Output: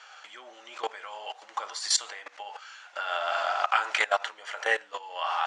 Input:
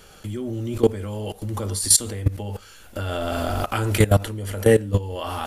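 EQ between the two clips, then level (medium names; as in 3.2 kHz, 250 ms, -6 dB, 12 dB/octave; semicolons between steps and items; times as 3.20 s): elliptic band-pass 750–6800 Hz, stop band 70 dB; distance through air 60 m; peaking EQ 1.5 kHz +5.5 dB 1.5 oct; 0.0 dB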